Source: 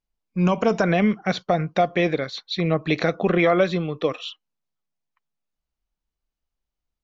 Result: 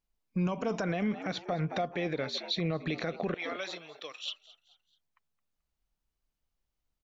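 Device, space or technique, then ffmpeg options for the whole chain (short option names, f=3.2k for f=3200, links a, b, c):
stacked limiters: -filter_complex "[0:a]asettb=1/sr,asplit=3[a][b][c];[a]atrim=end=3.344[d];[b]atrim=start=3.34:end=4.28,asetpts=PTS-STARTPTS,afade=t=in:d=0.004:c=qsin,afade=t=out:st=0.936:d=0.004:c=qsin,aderivative[e];[c]atrim=start=4.276[f];[d][e]acrossfade=d=0.004:c1=hsin:c2=qsin[g];[g][f]acrossfade=d=0.004:c1=qsin:c2=hsin,asplit=4[h][i][j][k];[i]adelay=217,afreqshift=81,volume=-19.5dB[l];[j]adelay=434,afreqshift=162,volume=-27.2dB[m];[k]adelay=651,afreqshift=243,volume=-35dB[n];[h][l][m][n]amix=inputs=4:normalize=0,alimiter=limit=-12.5dB:level=0:latency=1:release=231,alimiter=limit=-18dB:level=0:latency=1:release=84,alimiter=limit=-22.5dB:level=0:latency=1:release=249"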